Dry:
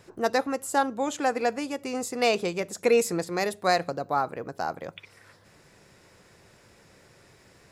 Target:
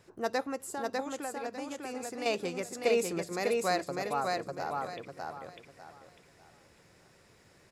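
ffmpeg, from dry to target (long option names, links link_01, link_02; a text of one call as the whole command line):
ffmpeg -i in.wav -filter_complex "[0:a]asettb=1/sr,asplit=3[link_01][link_02][link_03];[link_01]atrim=end=0.664[link_04];[link_02]atrim=start=0.66:end=2.26,asetpts=PTS-STARTPTS,afade=type=in:duration=0.004:curve=qsin,afade=type=out:start_time=1.596:duration=0.004:curve=qsin,acompressor=threshold=-31dB:ratio=3[link_05];[link_03]atrim=start=2.256[link_06];[link_04][link_05]acrossfade=duration=0.004:curve1=hsin:curve2=qsin[link_07];[link_07][link_06]acrossfade=duration=0.004:curve1=qsin:curve2=hsin,asplit=2[link_08][link_09];[link_09]aecho=0:1:599|1198|1797|2396:0.708|0.198|0.0555|0.0155[link_10];[link_08][link_10]amix=inputs=2:normalize=0,volume=-7dB" out.wav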